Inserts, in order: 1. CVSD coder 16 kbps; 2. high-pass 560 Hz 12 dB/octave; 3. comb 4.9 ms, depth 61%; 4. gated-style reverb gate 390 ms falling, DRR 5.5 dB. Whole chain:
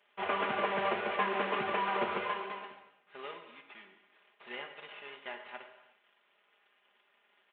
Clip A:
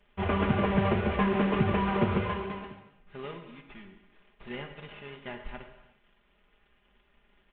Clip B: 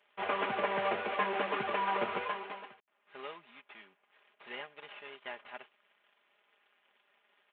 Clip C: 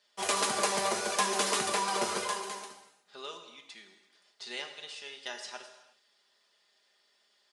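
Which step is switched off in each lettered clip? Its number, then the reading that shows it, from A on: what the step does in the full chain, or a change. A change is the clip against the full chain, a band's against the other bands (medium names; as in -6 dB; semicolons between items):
2, 125 Hz band +22.0 dB; 4, momentary loudness spread change +1 LU; 1, 4 kHz band +8.5 dB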